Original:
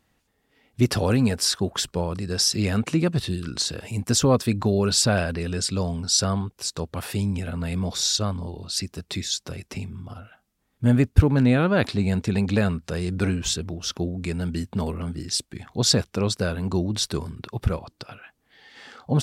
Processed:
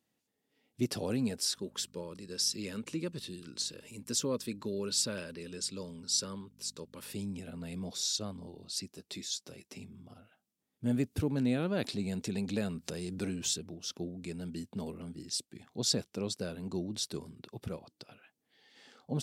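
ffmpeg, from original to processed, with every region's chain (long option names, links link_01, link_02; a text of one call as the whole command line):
ffmpeg -i in.wav -filter_complex "[0:a]asettb=1/sr,asplit=3[link_01][link_02][link_03];[link_01]atrim=end=1.564[link_04];[link_02]atrim=start=1.56:end=7.13,asetpts=PTS-STARTPTS,afade=type=in:duration=0.004:curve=qsin,afade=type=out:start_time=5.566:duration=0.004:curve=qsin,lowshelf=frequency=220:gain=-8.5,aeval=exprs='val(0)+0.00708*(sin(2*PI*50*n/s)+sin(2*PI*2*50*n/s)/2+sin(2*PI*3*50*n/s)/3+sin(2*PI*4*50*n/s)/4+sin(2*PI*5*50*n/s)/5)':channel_layout=same,asuperstop=centerf=720:order=4:qfactor=2.9[link_05];[link_03]atrim=start=7.126[link_06];[link_04][link_05]acrossfade=duration=0.004:curve1=hsin:curve2=qsin[link_07];[link_07][link_06]acrossfade=duration=0.004:curve1=qsin:curve2=hsin,asettb=1/sr,asplit=3[link_08][link_09][link_10];[link_08]atrim=end=8.914[link_11];[link_09]atrim=start=8.91:end=9.8,asetpts=PTS-STARTPTS,afade=type=in:duration=0.004:curve=qsin,afade=type=out:start_time=0.886:duration=0.004:curve=qsin,lowshelf=frequency=170:gain=-6,asplit=2[link_12][link_13];[link_13]adelay=15,volume=-11dB[link_14];[link_12][link_14]amix=inputs=2:normalize=0,atrim=end_sample=39249[link_15];[link_10]atrim=start=9.796[link_16];[link_11][link_15]acrossfade=duration=0.004:curve1=hsin:curve2=qsin[link_17];[link_17][link_16]acrossfade=duration=0.004:curve1=qsin:curve2=hsin,asettb=1/sr,asplit=3[link_18][link_19][link_20];[link_18]atrim=end=10.914[link_21];[link_19]atrim=start=10.91:end=13.58,asetpts=PTS-STARTPTS,afade=type=in:duration=0.004:curve=qsin,afade=type=out:start_time=2.666:duration=0.004:curve=qsin,acompressor=mode=upward:threshold=-20dB:ratio=2.5:attack=3.2:release=140:knee=2.83:detection=peak,highshelf=frequency=4600:gain=4.5[link_22];[link_20]atrim=start=13.576[link_23];[link_21][link_22]acrossfade=duration=0.004:curve1=hsin:curve2=qsin[link_24];[link_24][link_23]acrossfade=duration=0.004:curve1=qsin:curve2=hsin,highpass=180,equalizer=frequency=1300:width_type=o:width=2:gain=-9,volume=-8.5dB" out.wav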